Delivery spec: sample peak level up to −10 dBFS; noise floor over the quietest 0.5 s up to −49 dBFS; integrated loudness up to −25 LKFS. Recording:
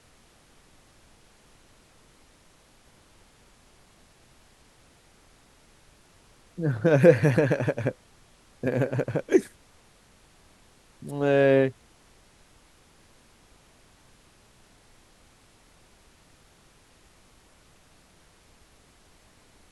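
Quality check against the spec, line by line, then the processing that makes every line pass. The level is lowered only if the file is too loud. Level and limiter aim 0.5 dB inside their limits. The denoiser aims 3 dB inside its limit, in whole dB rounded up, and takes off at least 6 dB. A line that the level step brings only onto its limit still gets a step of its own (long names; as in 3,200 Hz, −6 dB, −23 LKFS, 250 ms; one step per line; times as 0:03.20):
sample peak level −4.5 dBFS: out of spec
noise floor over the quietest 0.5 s −58 dBFS: in spec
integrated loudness −23.5 LKFS: out of spec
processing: level −2 dB
brickwall limiter −10.5 dBFS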